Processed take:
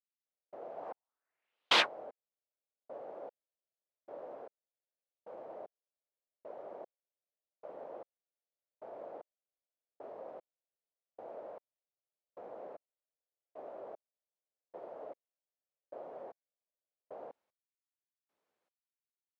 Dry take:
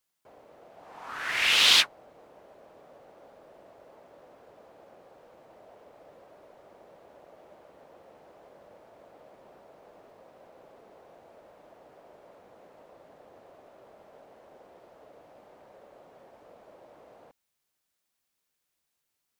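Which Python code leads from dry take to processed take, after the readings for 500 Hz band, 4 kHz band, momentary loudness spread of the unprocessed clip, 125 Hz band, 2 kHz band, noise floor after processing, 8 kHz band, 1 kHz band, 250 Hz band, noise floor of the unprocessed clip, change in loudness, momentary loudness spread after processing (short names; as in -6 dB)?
+2.5 dB, -12.0 dB, 18 LU, n/a, -10.0 dB, under -85 dBFS, under -15 dB, -1.5 dB, -1.5 dB, -81 dBFS, -19.0 dB, 9 LU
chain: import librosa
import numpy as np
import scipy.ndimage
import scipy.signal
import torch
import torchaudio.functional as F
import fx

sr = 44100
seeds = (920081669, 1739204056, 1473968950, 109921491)

y = fx.bandpass_q(x, sr, hz=560.0, q=1.1)
y = fx.step_gate(y, sr, bpm=114, pattern='....xxx..', floor_db=-60.0, edge_ms=4.5)
y = F.gain(torch.from_numpy(y), 8.5).numpy()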